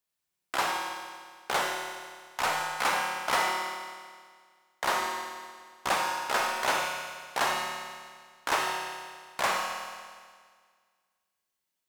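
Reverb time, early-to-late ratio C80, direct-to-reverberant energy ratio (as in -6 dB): 1.8 s, 2.5 dB, 0.5 dB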